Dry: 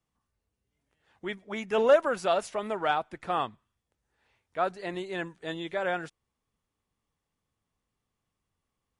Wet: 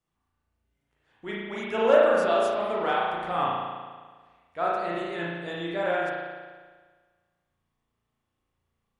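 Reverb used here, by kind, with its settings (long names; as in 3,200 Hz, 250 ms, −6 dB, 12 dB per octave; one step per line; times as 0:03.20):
spring reverb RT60 1.5 s, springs 35 ms, chirp 25 ms, DRR −5.5 dB
level −3 dB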